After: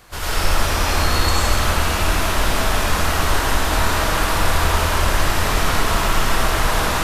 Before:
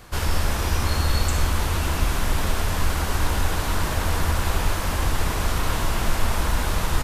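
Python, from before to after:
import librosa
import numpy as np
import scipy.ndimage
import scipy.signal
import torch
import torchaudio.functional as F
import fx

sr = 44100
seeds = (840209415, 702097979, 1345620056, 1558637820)

y = fx.low_shelf(x, sr, hz=400.0, db=-6.5)
y = fx.rev_freeverb(y, sr, rt60_s=2.2, hf_ratio=0.7, predelay_ms=50, drr_db=-8.5)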